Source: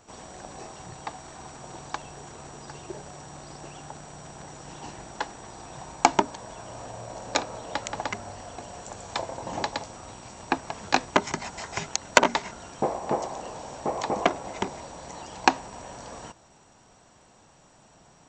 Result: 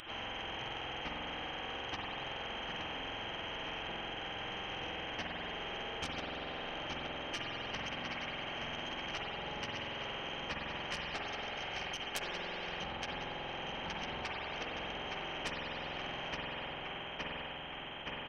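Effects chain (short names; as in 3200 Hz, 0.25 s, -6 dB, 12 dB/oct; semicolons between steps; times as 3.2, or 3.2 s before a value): spectrum mirrored in octaves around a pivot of 1700 Hz; low shelf 450 Hz -11 dB; feedback echo 0.868 s, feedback 50%, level -12.5 dB; inverted band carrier 3600 Hz; bell 810 Hz +8.5 dB 0.25 oct; tube stage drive 15 dB, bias 0.55; spring tank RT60 1.1 s, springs 46 ms, chirp 50 ms, DRR -1.5 dB; compressor 12:1, threshold -45 dBFS, peak gain reduction 25 dB; spectral compressor 2:1; gain +11 dB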